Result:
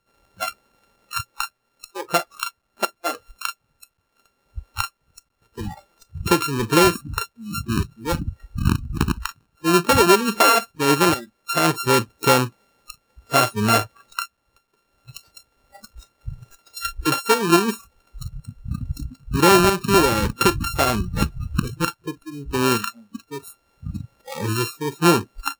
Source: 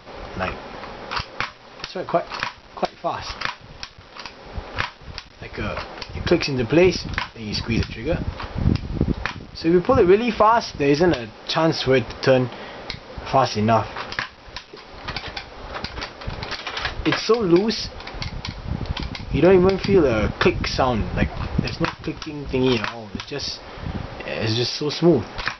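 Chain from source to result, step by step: sample sorter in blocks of 32 samples; spectral noise reduction 27 dB

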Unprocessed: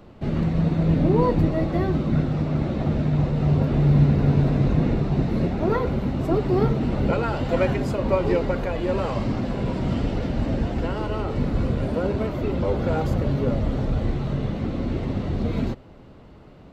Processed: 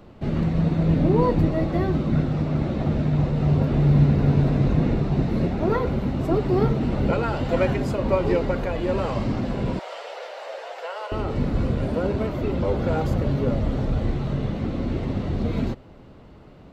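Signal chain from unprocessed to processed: 9.79–11.12 steep high-pass 500 Hz 48 dB/oct

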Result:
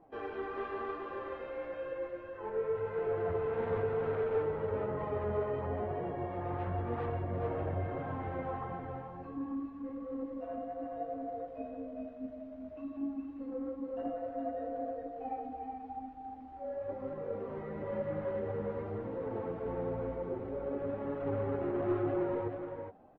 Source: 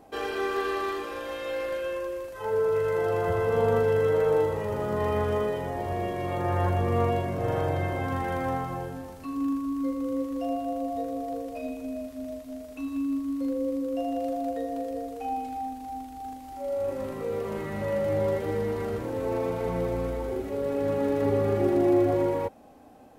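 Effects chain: LPF 1500 Hz 12 dB/oct; 13.52–13.97 dynamic EQ 230 Hz, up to +7 dB, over -51 dBFS, Q 5; soft clip -22 dBFS, distortion -15 dB; flange 0.99 Hz, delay 5.6 ms, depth 9.2 ms, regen +19%; echo 0.417 s -4.5 dB; gain -4.5 dB; AAC 24 kbps 48000 Hz

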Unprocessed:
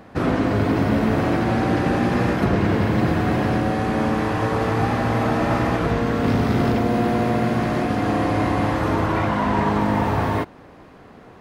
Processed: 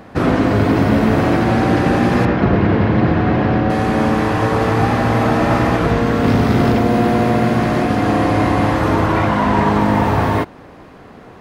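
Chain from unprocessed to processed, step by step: 2.25–3.7 air absorption 200 m; gain +5.5 dB

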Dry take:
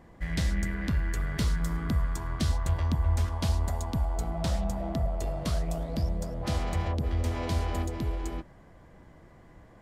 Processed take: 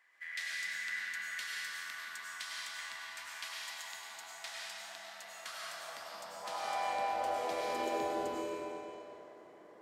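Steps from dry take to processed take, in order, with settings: high-pass sweep 1900 Hz -> 420 Hz, 5.12–7.85; digital reverb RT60 2.8 s, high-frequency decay 0.9×, pre-delay 60 ms, DRR -5 dB; gain -8.5 dB

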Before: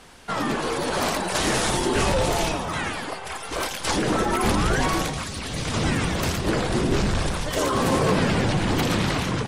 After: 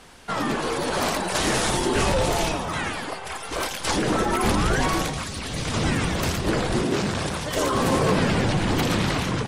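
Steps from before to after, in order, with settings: 6.82–7.54 HPF 180 Hz -> 64 Hz 12 dB/oct

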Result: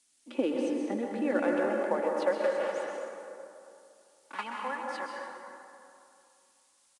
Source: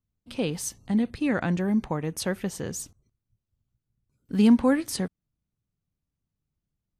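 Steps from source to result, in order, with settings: 2.32–4.44 block floating point 3-bit; three-band isolator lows -23 dB, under 180 Hz, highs -23 dB, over 2900 Hz; comb 3.5 ms, depth 53%; compressor 3:1, threshold -26 dBFS, peak gain reduction 9.5 dB; added noise violet -58 dBFS; high-pass sweep 300 Hz -> 940 Hz, 0.05–3.88; plate-style reverb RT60 2.6 s, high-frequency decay 0.5×, pre-delay 0.115 s, DRR -0.5 dB; gain -2 dB; IMA ADPCM 88 kbps 22050 Hz

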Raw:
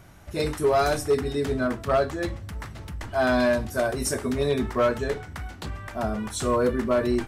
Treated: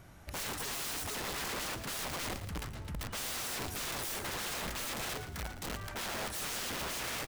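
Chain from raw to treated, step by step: wrapped overs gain 28.5 dB; frequency-shifting echo 0.114 s, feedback 36%, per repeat -36 Hz, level -11 dB; gain -5 dB

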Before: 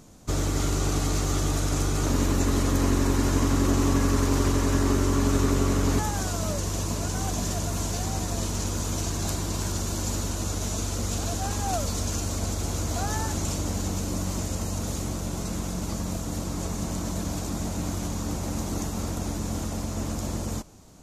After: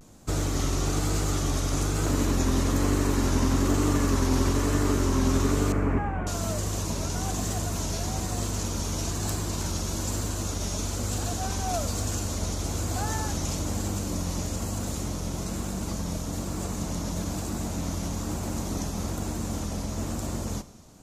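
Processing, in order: vibrato 1.1 Hz 97 cents; 5.72–6.27 steep low-pass 2500 Hz 48 dB/oct; Schroeder reverb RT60 1.3 s, combs from 27 ms, DRR 16 dB; gain -1 dB

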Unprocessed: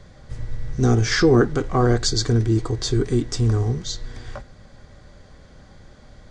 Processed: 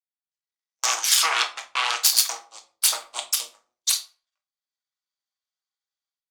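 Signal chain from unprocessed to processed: added harmonics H 5 -33 dB, 6 -11 dB, 7 -11 dB, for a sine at -5.5 dBFS; HPF 1300 Hz 24 dB/oct; bell 1700 Hz -14.5 dB 1 oct; in parallel at -1.5 dB: limiter -16.5 dBFS, peak gain reduction 10 dB; on the sum: gate -31 dBFS, range -50 dB; AGC gain up to 16.5 dB; on a send at -4 dB: reverb RT60 0.40 s, pre-delay 6 ms; on the sum: gain -1.5 dB

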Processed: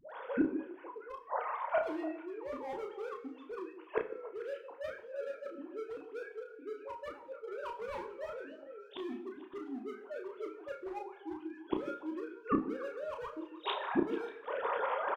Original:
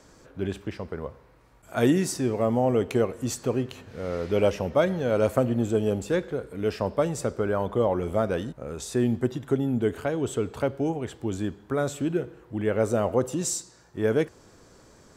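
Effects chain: sine-wave speech; bell 1000 Hz +13.5 dB 0.6 oct; AGC gain up to 13 dB; dispersion highs, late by 0.106 s, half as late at 610 Hz; hard clip -13 dBFS, distortion -9 dB; flipped gate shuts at -31 dBFS, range -40 dB; doubler 32 ms -5.5 dB; delay with a stepping band-pass 0.147 s, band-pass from 300 Hz, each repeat 1.4 oct, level -8.5 dB; two-slope reverb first 0.53 s, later 2.1 s, from -24 dB, DRR 7.5 dB; gain +13.5 dB

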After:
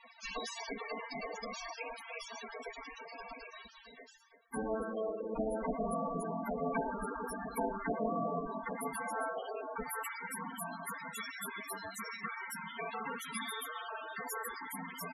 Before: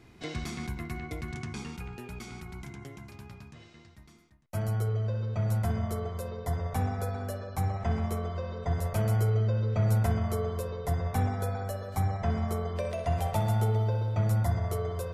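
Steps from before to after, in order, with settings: minimum comb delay 1.8 ms; HPF 51 Hz 6 dB/oct, from 8.46 s 270 Hz, from 9.82 s 630 Hz; dynamic EQ 1300 Hz, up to -4 dB, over -51 dBFS, Q 0.89; spring tank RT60 1.9 s, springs 47/58 ms, chirp 40 ms, DRR 13 dB; compressor 2.5:1, threshold -37 dBFS, peak gain reduction 8 dB; spectral gate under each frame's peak -15 dB weak; comb 4.4 ms, depth 59%; loudest bins only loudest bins 16; gain +12.5 dB

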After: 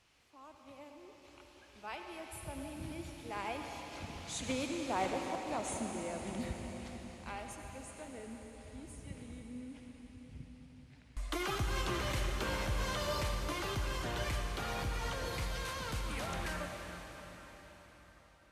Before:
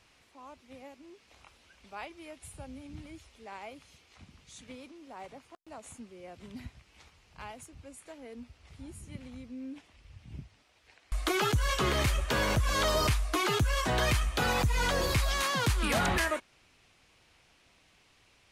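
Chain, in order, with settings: Doppler pass-by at 4.84, 16 m/s, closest 11 m; reverb RT60 5.0 s, pre-delay 67 ms, DRR 2.5 dB; gain +11 dB

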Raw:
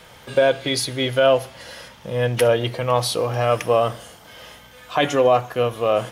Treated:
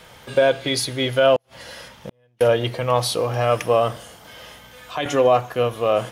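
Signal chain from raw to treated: 1.36–2.41 flipped gate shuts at -19 dBFS, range -39 dB; 3.96–5.06 three-band squash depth 40%

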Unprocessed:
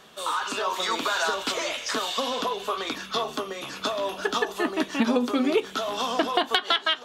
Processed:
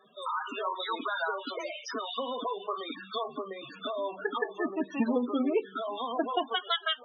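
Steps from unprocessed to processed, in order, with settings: pre-echo 35 ms -21 dB; loudest bins only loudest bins 16; gain -4.5 dB

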